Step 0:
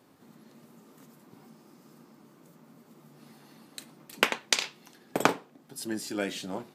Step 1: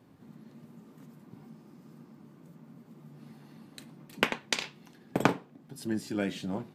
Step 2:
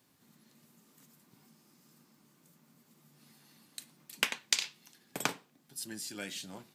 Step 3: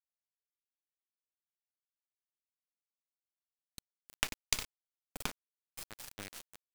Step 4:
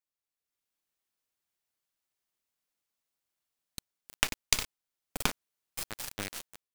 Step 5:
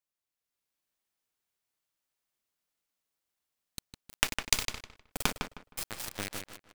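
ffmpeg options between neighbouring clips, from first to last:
ffmpeg -i in.wav -af "bass=frequency=250:gain=11,treble=frequency=4000:gain=-6,bandreject=frequency=1300:width=24,volume=-2.5dB" out.wav
ffmpeg -i in.wav -filter_complex "[0:a]tiltshelf=frequency=1200:gain=-8,acrossover=split=730|4700[link_01][link_02][link_03];[link_03]acontrast=88[link_04];[link_01][link_02][link_04]amix=inputs=3:normalize=0,volume=-7dB" out.wav
ffmpeg -i in.wav -af "acrusher=bits=3:dc=4:mix=0:aa=0.000001,volume=-3dB" out.wav
ffmpeg -i in.wav -af "dynaudnorm=framelen=200:gausssize=5:maxgain=9dB" out.wav
ffmpeg -i in.wav -filter_complex "[0:a]asplit=2[link_01][link_02];[link_02]adelay=156,lowpass=frequency=3000:poles=1,volume=-5dB,asplit=2[link_03][link_04];[link_04]adelay=156,lowpass=frequency=3000:poles=1,volume=0.26,asplit=2[link_05][link_06];[link_06]adelay=156,lowpass=frequency=3000:poles=1,volume=0.26[link_07];[link_01][link_03][link_05][link_07]amix=inputs=4:normalize=0" out.wav

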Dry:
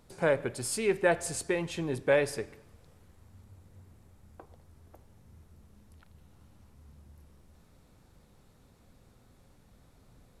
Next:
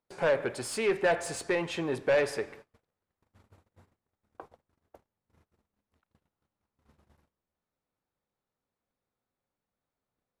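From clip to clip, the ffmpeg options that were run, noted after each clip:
ffmpeg -i in.wav -filter_complex "[0:a]agate=range=-29dB:threshold=-52dB:ratio=16:detection=peak,asplit=2[link_01][link_02];[link_02]highpass=frequency=720:poles=1,volume=19dB,asoftclip=type=tanh:threshold=-12dB[link_03];[link_01][link_03]amix=inputs=2:normalize=0,lowpass=frequency=2000:poles=1,volume=-6dB,volume=-4dB" out.wav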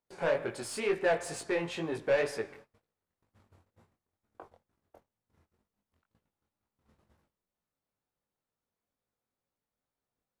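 ffmpeg -i in.wav -af "flanger=delay=17.5:depth=5.9:speed=2.1" out.wav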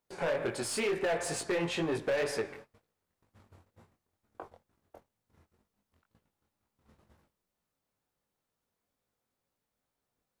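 ffmpeg -i in.wav -af "alimiter=level_in=2dB:limit=-24dB:level=0:latency=1:release=59,volume=-2dB,volume=30.5dB,asoftclip=hard,volume=-30.5dB,volume=4.5dB" out.wav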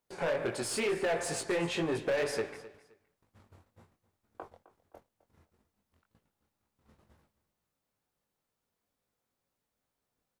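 ffmpeg -i in.wav -af "aecho=1:1:260|520:0.133|0.032" out.wav

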